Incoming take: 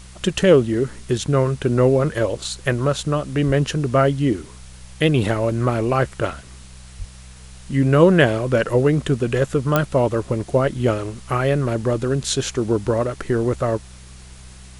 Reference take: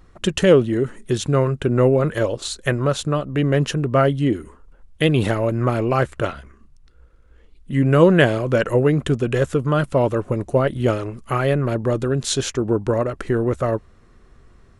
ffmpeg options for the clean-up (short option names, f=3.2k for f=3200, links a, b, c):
-filter_complex "[0:a]adeclick=t=4,bandreject=f=63.5:t=h:w=4,bandreject=f=127:t=h:w=4,bandreject=f=190.5:t=h:w=4,asplit=3[a][b][c];[a]afade=t=out:st=3.46:d=0.02[d];[b]highpass=f=140:w=0.5412,highpass=f=140:w=1.3066,afade=t=in:st=3.46:d=0.02,afade=t=out:st=3.58:d=0.02[e];[c]afade=t=in:st=3.58:d=0.02[f];[d][e][f]amix=inputs=3:normalize=0,asplit=3[g][h][i];[g]afade=t=out:st=6.98:d=0.02[j];[h]highpass=f=140:w=0.5412,highpass=f=140:w=1.3066,afade=t=in:st=6.98:d=0.02,afade=t=out:st=7.1:d=0.02[k];[i]afade=t=in:st=7.1:d=0.02[l];[j][k][l]amix=inputs=3:normalize=0,afwtdn=0.0056"